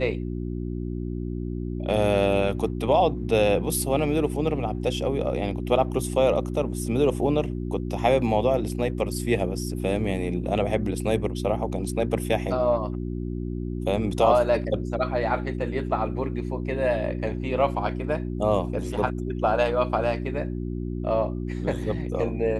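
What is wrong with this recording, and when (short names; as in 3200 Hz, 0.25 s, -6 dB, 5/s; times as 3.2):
hum 60 Hz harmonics 6 -30 dBFS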